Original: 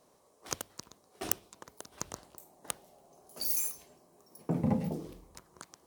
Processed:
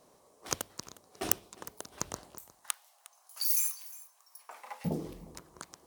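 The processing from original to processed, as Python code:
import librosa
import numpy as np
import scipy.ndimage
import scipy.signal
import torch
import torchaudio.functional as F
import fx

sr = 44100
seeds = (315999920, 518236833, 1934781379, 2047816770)

y = fx.highpass(x, sr, hz=1000.0, slope=24, at=(2.38, 4.85))
y = y + 10.0 ** (-19.5 / 20.0) * np.pad(y, (int(358 * sr / 1000.0), 0))[:len(y)]
y = y * librosa.db_to_amplitude(3.0)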